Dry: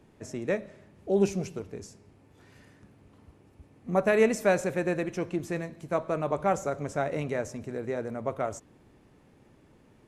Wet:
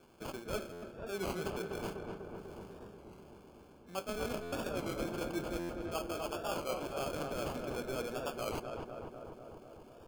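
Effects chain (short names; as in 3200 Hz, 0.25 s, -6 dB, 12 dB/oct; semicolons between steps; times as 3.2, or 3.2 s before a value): HPF 420 Hz 12 dB/oct; bell 580 Hz -8.5 dB 2.6 oct; reverse; compressor 6:1, threshold -44 dBFS, peak gain reduction 17 dB; reverse; flange 0.46 Hz, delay 7.7 ms, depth 7.5 ms, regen +66%; sample-and-hold 23×; on a send: darkening echo 0.247 s, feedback 75%, low-pass 1800 Hz, level -4 dB; on the sum: stuck buffer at 0.72/4.42/5.59, samples 512, times 8; record warp 33 1/3 rpm, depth 100 cents; gain +12.5 dB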